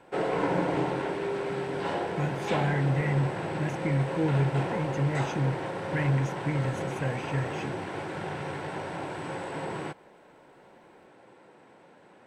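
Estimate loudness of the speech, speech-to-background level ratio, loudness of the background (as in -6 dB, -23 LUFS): -30.5 LUFS, 2.0 dB, -32.5 LUFS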